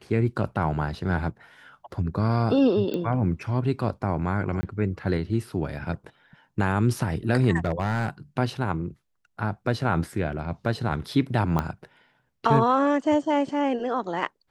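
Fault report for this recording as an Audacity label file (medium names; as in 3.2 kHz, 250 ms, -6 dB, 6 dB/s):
2.940000	2.940000	pop -18 dBFS
4.610000	4.630000	dropout 20 ms
7.560000	8.080000	clipped -19 dBFS
11.590000	11.590000	pop -12 dBFS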